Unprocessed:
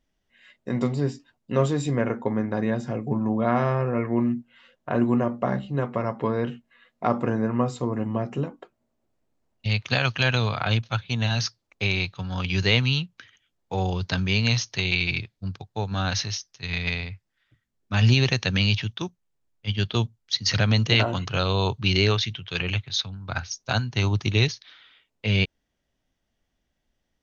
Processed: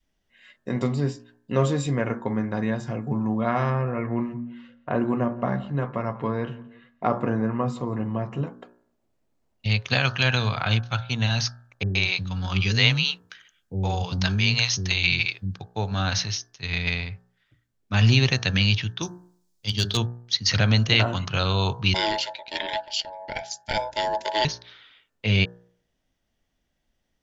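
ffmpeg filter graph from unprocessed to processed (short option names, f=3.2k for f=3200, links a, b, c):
-filter_complex "[0:a]asettb=1/sr,asplit=3[a][b][c];[a]atrim=end=3.704[d];[b]atrim=start=3.7:end=8.47,asetpts=PTS-STARTPTS,afade=t=in:d=0.004:c=qsin,afade=t=out:st=4.766:d=0.004:c=qsin,highshelf=f=4.2k:g=-10,asplit=2[e][f];[f]adelay=172,lowpass=f=3.5k:p=1,volume=-19.5dB,asplit=2[g][h];[h]adelay=172,lowpass=f=3.5k:p=1,volume=0.29[i];[e][g][i]amix=inputs=3:normalize=0,atrim=end_sample=210357[j];[c]atrim=start=8.466[k];[d][j]acrossfade=d=0.004:c1=hsin:c2=qsin[l];[l][k]acrossfade=d=0.004:c1=qsin:c2=hsin,asettb=1/sr,asplit=3[m][n][o];[m]atrim=end=11.834[p];[n]atrim=start=11.83:end=15.54,asetpts=PTS-STARTPTS,afade=t=in:d=0.004:c=qsin,afade=t=out:st=3.706:d=0.004:c=qsin,highshelf=f=5.4k:g=6,acrossover=split=390[q][r];[r]adelay=120[s];[q][s]amix=inputs=2:normalize=0,atrim=end_sample=163611[t];[o]atrim=start=15.536[u];[p][t]acrossfade=d=0.004:c1=hsin:c2=qsin[v];[v][u]acrossfade=d=0.004:c1=qsin:c2=hsin,asettb=1/sr,asplit=3[w][x][y];[w]atrim=end=19.024[z];[x]atrim=start=19.02:end=19.97,asetpts=PTS-STARTPTS,afade=t=in:d=0.004:c=qsin,afade=t=out:st=0.946:d=0.004:c=qsin,highshelf=f=3.5k:t=q:w=1.5:g=11,bandreject=f=50:t=h:w=6,bandreject=f=100:t=h:w=6,bandreject=f=150:t=h:w=6,bandreject=f=200:t=h:w=6,bandreject=f=250:t=h:w=6,bandreject=f=300:t=h:w=6,bandreject=f=350:t=h:w=6,bandreject=f=400:t=h:w=6,aeval=exprs='clip(val(0),-1,0.133)':c=same[aa];[y]atrim=start=19.966[ab];[z][aa]acrossfade=d=0.004:c1=hsin:c2=qsin[ac];[ac][ab]acrossfade=d=0.004:c1=qsin:c2=hsin,asettb=1/sr,asplit=3[ad][ae][af];[ad]atrim=end=21.944[ag];[ae]atrim=start=21.94:end=24.45,asetpts=PTS-STARTPTS,afade=t=in:d=0.004:c=qsin,afade=t=out:st=2.506:d=0.004:c=qsin,aeval=exprs='val(0)*sin(2*PI*750*n/s)':c=same,asuperstop=centerf=1200:order=4:qfactor=2.9[ah];[af]atrim=start=24.446[ai];[ag][ah]acrossfade=d=0.004:c1=hsin:c2=qsin[aj];[aj][ai]acrossfade=d=0.004:c1=qsin:c2=hsin,bandreject=f=59.78:t=h:w=4,bandreject=f=119.56:t=h:w=4,bandreject=f=179.34:t=h:w=4,bandreject=f=239.12:t=h:w=4,bandreject=f=298.9:t=h:w=4,bandreject=f=358.68:t=h:w=4,bandreject=f=418.46:t=h:w=4,bandreject=f=478.24:t=h:w=4,bandreject=f=538.02:t=h:w=4,bandreject=f=597.8:t=h:w=4,bandreject=f=657.58:t=h:w=4,bandreject=f=717.36:t=h:w=4,bandreject=f=777.14:t=h:w=4,bandreject=f=836.92:t=h:w=4,bandreject=f=896.7:t=h:w=4,bandreject=f=956.48:t=h:w=4,bandreject=f=1.01626k:t=h:w=4,bandreject=f=1.07604k:t=h:w=4,bandreject=f=1.13582k:t=h:w=4,bandreject=f=1.1956k:t=h:w=4,bandreject=f=1.25538k:t=h:w=4,bandreject=f=1.31516k:t=h:w=4,bandreject=f=1.37494k:t=h:w=4,bandreject=f=1.43472k:t=h:w=4,bandreject=f=1.4945k:t=h:w=4,bandreject=f=1.55428k:t=h:w=4,bandreject=f=1.61406k:t=h:w=4,bandreject=f=1.67384k:t=h:w=4,bandreject=f=1.73362k:t=h:w=4,bandreject=f=1.7934k:t=h:w=4,adynamicequalizer=threshold=0.01:dfrequency=430:dqfactor=0.93:tfrequency=430:tqfactor=0.93:attack=5:release=100:ratio=0.375:range=2.5:mode=cutabove:tftype=bell,volume=1.5dB"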